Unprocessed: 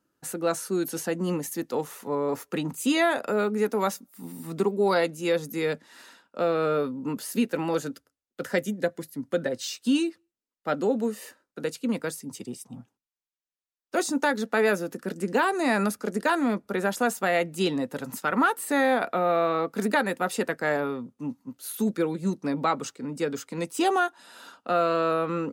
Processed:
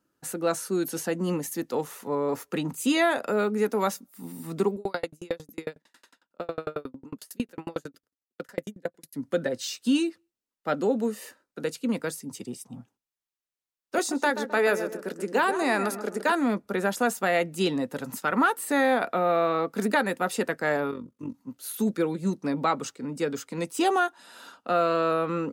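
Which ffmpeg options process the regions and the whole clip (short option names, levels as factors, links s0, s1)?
-filter_complex "[0:a]asettb=1/sr,asplit=3[s0][s1][s2];[s0]atrim=end=4.764[s3];[s1]atrim=start=4.76:end=9.13,asetpts=PTS-STARTPTS,afade=t=in:d=0.004:c=qsin,afade=t=out:st=4.366:d=0.004:c=qsin,highpass=61,aeval=exprs='val(0)*pow(10,-38*if(lt(mod(11*n/s,1),2*abs(11)/1000),1-mod(11*n/s,1)/(2*abs(11)/1000),(mod(11*n/s,1)-2*abs(11)/1000)/(1-2*abs(11)/1000))/20)':c=same[s4];[s2]atrim=start=9.126[s5];[s3][s4]acrossfade=d=0.004:c1=hsin:c2=qsin[s6];[s6][s5]acrossfade=d=0.004:c1=qsin:c2=hsin,asettb=1/sr,asplit=3[s7][s8][s9];[s7]atrim=end=13.984[s10];[s8]atrim=start=13.98:end=16.32,asetpts=PTS-STARTPTS,afade=t=in:d=0.004:c=qsin,afade=t=out:st=2.336:d=0.004:c=qsin,highpass=270,asplit=2[s11][s12];[s12]adelay=131,lowpass=f=1400:p=1,volume=0.355,asplit=2[s13][s14];[s14]adelay=131,lowpass=f=1400:p=1,volume=0.42,asplit=2[s15][s16];[s16]adelay=131,lowpass=f=1400:p=1,volume=0.42,asplit=2[s17][s18];[s18]adelay=131,lowpass=f=1400:p=1,volume=0.42,asplit=2[s19][s20];[s20]adelay=131,lowpass=f=1400:p=1,volume=0.42[s21];[s11][s13][s15][s17][s19][s21]amix=inputs=6:normalize=0,atrim=end_sample=103194[s22];[s9]atrim=start=16.316[s23];[s10][s22]acrossfade=d=0.004:c1=hsin:c2=qsin[s24];[s24][s23]acrossfade=d=0.004:c1=qsin:c2=hsin,asettb=1/sr,asplit=3[s25][s26][s27];[s25]atrim=end=20.914[s28];[s26]atrim=start=20.91:end=21.35,asetpts=PTS-STARTPTS,afade=t=in:d=0.004:c=qsin,afade=t=out:st=0.436:d=0.004:c=qsin,asuperstop=centerf=760:order=4:qfactor=3.3,tremolo=f=46:d=0.75[s29];[s27]atrim=start=21.346[s30];[s28][s29]acrossfade=d=0.004:c1=hsin:c2=qsin[s31];[s31][s30]acrossfade=d=0.004:c1=qsin:c2=hsin"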